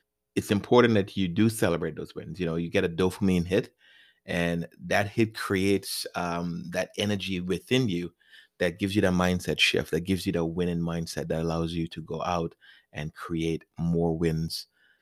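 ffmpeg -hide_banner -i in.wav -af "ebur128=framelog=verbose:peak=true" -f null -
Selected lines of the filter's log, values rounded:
Integrated loudness:
  I:         -27.5 LUFS
  Threshold: -37.9 LUFS
Loudness range:
  LRA:         4.7 LU
  Threshold: -48.1 LUFS
  LRA low:   -30.8 LUFS
  LRA high:  -26.1 LUFS
True peak:
  Peak:       -7.4 dBFS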